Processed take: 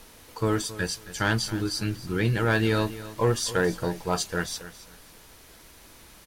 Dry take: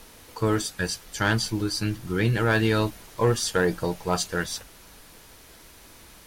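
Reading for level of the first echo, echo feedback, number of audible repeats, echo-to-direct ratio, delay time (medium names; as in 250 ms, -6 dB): -15.5 dB, 24%, 2, -15.0 dB, 271 ms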